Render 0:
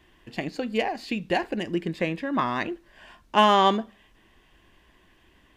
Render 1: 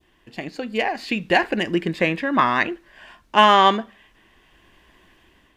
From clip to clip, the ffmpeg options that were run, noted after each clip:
ffmpeg -i in.wav -af "adynamicequalizer=threshold=0.0178:dfrequency=1800:dqfactor=0.79:tfrequency=1800:tqfactor=0.79:attack=5:release=100:ratio=0.375:range=3.5:mode=boostabove:tftype=bell,dynaudnorm=framelen=390:gausssize=5:maxgain=9.5dB,lowshelf=frequency=160:gain=-3,volume=-1dB" out.wav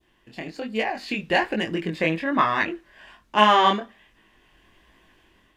ffmpeg -i in.wav -af "flanger=delay=18:depth=7.3:speed=1.2" out.wav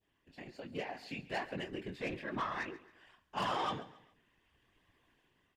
ffmpeg -i in.wav -af "asoftclip=type=tanh:threshold=-16dB,afftfilt=real='hypot(re,im)*cos(2*PI*random(0))':imag='hypot(re,im)*sin(2*PI*random(1))':win_size=512:overlap=0.75,aecho=1:1:136|272|408:0.133|0.0493|0.0183,volume=-8.5dB" out.wav

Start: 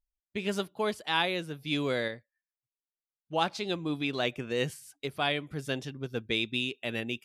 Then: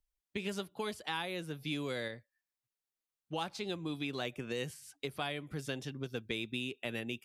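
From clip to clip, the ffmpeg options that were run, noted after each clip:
ffmpeg -i in.wav -filter_complex "[0:a]bandreject=frequency=640:width=20,acrossover=split=110|2500|7500[link_01][link_02][link_03][link_04];[link_01]acompressor=threshold=-56dB:ratio=4[link_05];[link_02]acompressor=threshold=-38dB:ratio=4[link_06];[link_03]acompressor=threshold=-47dB:ratio=4[link_07];[link_04]acompressor=threshold=-56dB:ratio=4[link_08];[link_05][link_06][link_07][link_08]amix=inputs=4:normalize=0,volume=1dB" out.wav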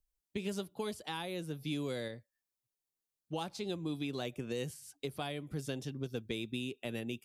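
ffmpeg -i in.wav -af "equalizer=frequency=1800:width_type=o:width=2.3:gain=-8,volume=2dB" out.wav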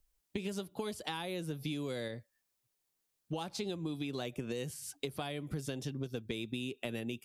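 ffmpeg -i in.wav -af "acompressor=threshold=-43dB:ratio=6,volume=8dB" out.wav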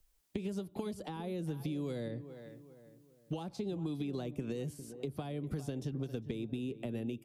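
ffmpeg -i in.wav -filter_complex "[0:a]asplit=2[link_01][link_02];[link_02]adelay=403,lowpass=frequency=1200:poles=1,volume=-15dB,asplit=2[link_03][link_04];[link_04]adelay=403,lowpass=frequency=1200:poles=1,volume=0.42,asplit=2[link_05][link_06];[link_06]adelay=403,lowpass=frequency=1200:poles=1,volume=0.42,asplit=2[link_07][link_08];[link_08]adelay=403,lowpass=frequency=1200:poles=1,volume=0.42[link_09];[link_01][link_03][link_05][link_07][link_09]amix=inputs=5:normalize=0,acrossover=split=360|1000[link_10][link_11][link_12];[link_10]acompressor=threshold=-40dB:ratio=4[link_13];[link_11]acompressor=threshold=-50dB:ratio=4[link_14];[link_12]acompressor=threshold=-60dB:ratio=4[link_15];[link_13][link_14][link_15]amix=inputs=3:normalize=0,volume=4.5dB" out.wav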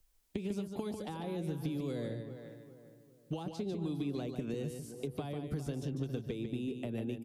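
ffmpeg -i in.wav -af "aecho=1:1:147:0.473" out.wav

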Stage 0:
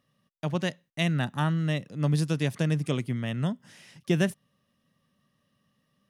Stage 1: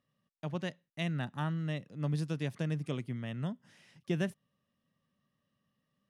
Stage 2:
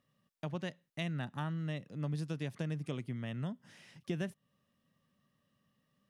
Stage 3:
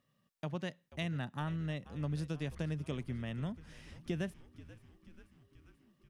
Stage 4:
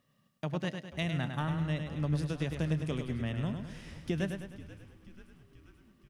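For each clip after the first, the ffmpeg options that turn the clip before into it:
ffmpeg -i in.wav -af "highshelf=frequency=5700:gain=-7.5,volume=-8dB" out.wav
ffmpeg -i in.wav -af "acompressor=threshold=-43dB:ratio=2,volume=3.5dB" out.wav
ffmpeg -i in.wav -filter_complex "[0:a]asplit=8[link_01][link_02][link_03][link_04][link_05][link_06][link_07][link_08];[link_02]adelay=485,afreqshift=-78,volume=-17dB[link_09];[link_03]adelay=970,afreqshift=-156,volume=-20.7dB[link_10];[link_04]adelay=1455,afreqshift=-234,volume=-24.5dB[link_11];[link_05]adelay=1940,afreqshift=-312,volume=-28.2dB[link_12];[link_06]adelay=2425,afreqshift=-390,volume=-32dB[link_13];[link_07]adelay=2910,afreqshift=-468,volume=-35.7dB[link_14];[link_08]adelay=3395,afreqshift=-546,volume=-39.5dB[link_15];[link_01][link_09][link_10][link_11][link_12][link_13][link_14][link_15]amix=inputs=8:normalize=0" out.wav
ffmpeg -i in.wav -af "aecho=1:1:103|206|309|412|515|618:0.473|0.227|0.109|0.0523|0.0251|0.0121,volume=4dB" out.wav

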